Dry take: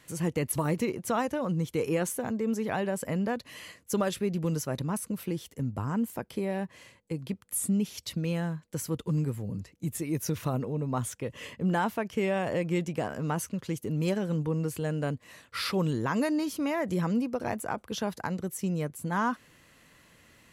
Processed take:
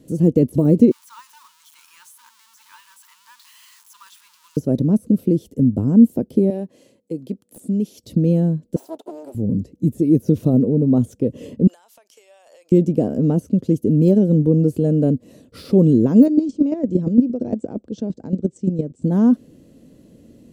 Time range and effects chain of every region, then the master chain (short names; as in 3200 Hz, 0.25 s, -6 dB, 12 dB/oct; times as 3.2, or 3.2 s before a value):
0.91–4.57 zero-crossing step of -32.5 dBFS + brick-wall FIR high-pass 880 Hz
6.5–8.04 HPF 650 Hz 6 dB/oct + wrapped overs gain 21.5 dB
8.76–9.35 minimum comb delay 3 ms + resonant high-pass 860 Hz, resonance Q 2.7
11.67–12.72 HPF 950 Hz 24 dB/oct + bell 7200 Hz +8 dB 2 oct + compressor, threshold -45 dBFS
16.26–19.04 steep low-pass 8400 Hz 72 dB/oct + chopper 8.7 Hz, depth 65%, duty 15%
whole clip: resonant low shelf 760 Hz +11 dB, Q 1.5; de-esser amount 85%; graphic EQ 250/1000/2000 Hz +10/-5/-10 dB; gain -1.5 dB